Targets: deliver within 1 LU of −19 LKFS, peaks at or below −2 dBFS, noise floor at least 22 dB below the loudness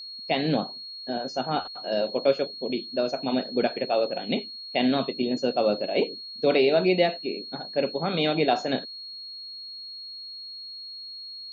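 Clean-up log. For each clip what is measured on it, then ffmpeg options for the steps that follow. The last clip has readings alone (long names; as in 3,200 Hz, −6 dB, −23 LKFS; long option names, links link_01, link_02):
interfering tone 4,300 Hz; level of the tone −37 dBFS; integrated loudness −27.0 LKFS; sample peak −8.5 dBFS; target loudness −19.0 LKFS
→ -af "bandreject=frequency=4300:width=30"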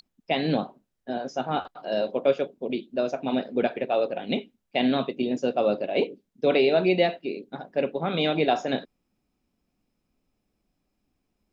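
interfering tone none found; integrated loudness −26.5 LKFS; sample peak −8.5 dBFS; target loudness −19.0 LKFS
→ -af "volume=7.5dB,alimiter=limit=-2dB:level=0:latency=1"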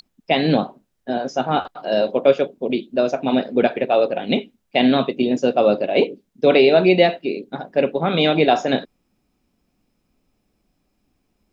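integrated loudness −19.0 LKFS; sample peak −2.0 dBFS; background noise floor −70 dBFS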